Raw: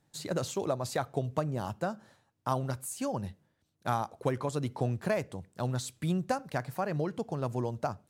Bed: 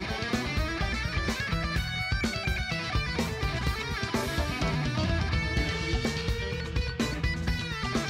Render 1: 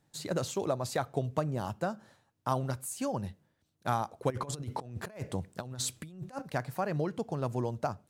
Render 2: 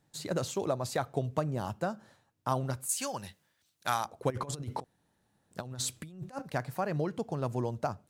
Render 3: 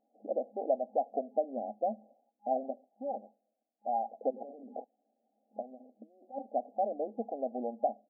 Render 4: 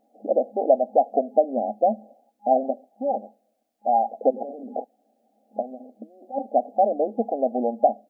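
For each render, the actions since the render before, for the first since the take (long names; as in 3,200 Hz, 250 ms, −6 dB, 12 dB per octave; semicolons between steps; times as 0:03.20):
0:04.30–0:06.42: compressor whose output falls as the input rises −37 dBFS, ratio −0.5
0:02.89–0:04.05: tilt shelving filter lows −9.5 dB, about 900 Hz; 0:04.84–0:05.51: fill with room tone
brick-wall band-pass 210–820 Hz; comb filter 1.4 ms, depth 72%
level +12 dB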